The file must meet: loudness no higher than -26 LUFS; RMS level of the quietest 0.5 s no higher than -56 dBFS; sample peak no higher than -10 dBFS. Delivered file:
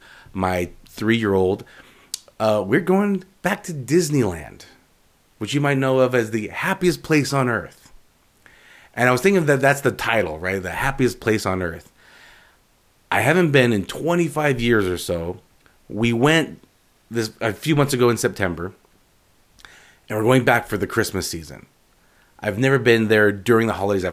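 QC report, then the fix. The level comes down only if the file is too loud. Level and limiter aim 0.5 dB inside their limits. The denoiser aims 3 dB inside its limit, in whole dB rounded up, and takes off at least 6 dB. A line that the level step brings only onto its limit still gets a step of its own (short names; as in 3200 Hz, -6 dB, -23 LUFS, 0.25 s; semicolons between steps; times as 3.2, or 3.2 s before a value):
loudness -20.0 LUFS: fail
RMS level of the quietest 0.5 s -59 dBFS: OK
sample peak -3.5 dBFS: fail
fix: gain -6.5 dB; limiter -10.5 dBFS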